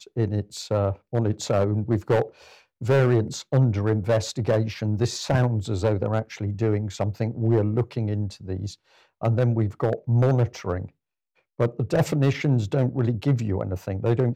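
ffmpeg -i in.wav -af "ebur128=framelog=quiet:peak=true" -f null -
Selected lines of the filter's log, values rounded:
Integrated loudness:
  I:         -24.5 LUFS
  Threshold: -34.7 LUFS
Loudness range:
  LRA:         2.4 LU
  Threshold: -44.7 LUFS
  LRA low:   -25.9 LUFS
  LRA high:  -23.5 LUFS
True peak:
  Peak:      -11.1 dBFS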